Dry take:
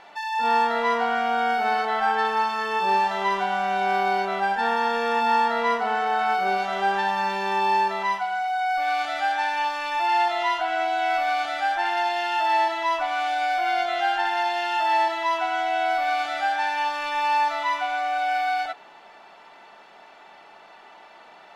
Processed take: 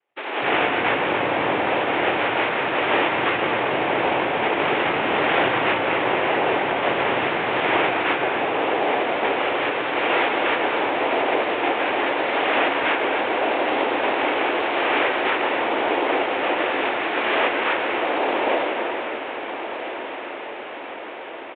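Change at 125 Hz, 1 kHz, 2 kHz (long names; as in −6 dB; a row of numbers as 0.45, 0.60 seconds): can't be measured, −1.5 dB, +4.5 dB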